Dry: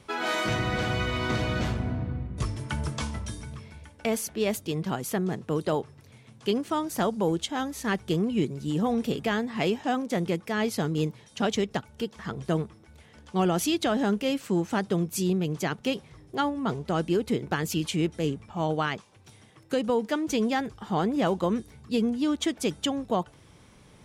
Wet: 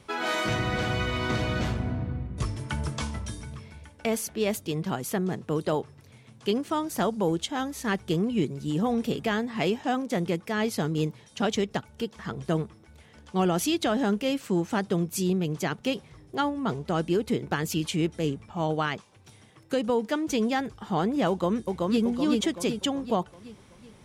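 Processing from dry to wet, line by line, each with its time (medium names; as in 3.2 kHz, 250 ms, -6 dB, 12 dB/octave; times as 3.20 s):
21.29–22.02 s: echo throw 380 ms, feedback 50%, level -2 dB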